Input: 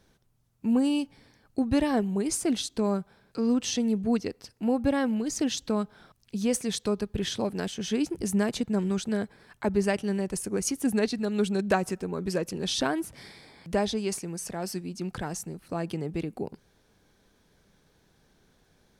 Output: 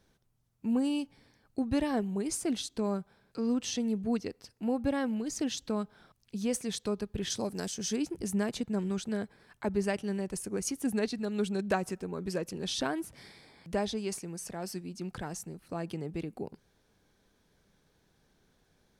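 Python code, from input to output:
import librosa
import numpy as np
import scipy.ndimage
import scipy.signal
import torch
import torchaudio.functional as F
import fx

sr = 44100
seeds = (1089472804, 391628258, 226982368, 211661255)

y = fx.high_shelf_res(x, sr, hz=4200.0, db=7.5, q=1.5, at=(7.3, 7.96))
y = y * librosa.db_to_amplitude(-5.0)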